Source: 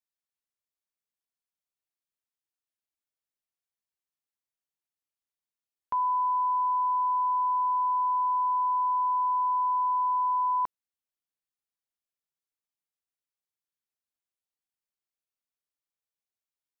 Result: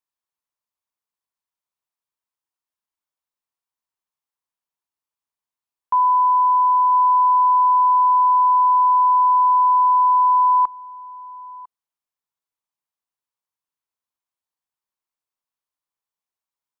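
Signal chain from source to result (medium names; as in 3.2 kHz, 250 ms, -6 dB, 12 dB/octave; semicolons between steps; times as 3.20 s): peaking EQ 1 kHz +10.5 dB 0.66 oct; on a send: delay 1000 ms -21 dB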